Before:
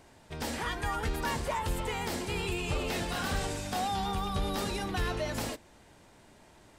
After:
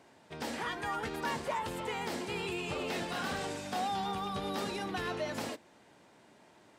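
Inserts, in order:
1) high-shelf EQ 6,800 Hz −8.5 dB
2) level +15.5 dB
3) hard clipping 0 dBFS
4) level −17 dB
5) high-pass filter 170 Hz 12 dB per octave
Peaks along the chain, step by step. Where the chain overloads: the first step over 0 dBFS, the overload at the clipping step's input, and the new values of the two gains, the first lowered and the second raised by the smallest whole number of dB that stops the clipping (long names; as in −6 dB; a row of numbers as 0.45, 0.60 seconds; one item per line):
−21.5, −6.0, −6.0, −23.0, −23.0 dBFS
no step passes full scale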